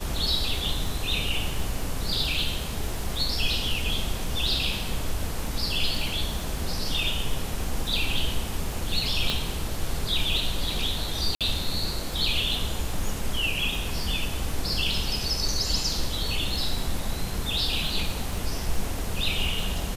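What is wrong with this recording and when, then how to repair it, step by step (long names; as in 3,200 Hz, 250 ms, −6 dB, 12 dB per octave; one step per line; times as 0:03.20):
surface crackle 24 per second −30 dBFS
0:09.30: click −11 dBFS
0:11.35–0:11.41: drop-out 57 ms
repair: click removal
repair the gap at 0:11.35, 57 ms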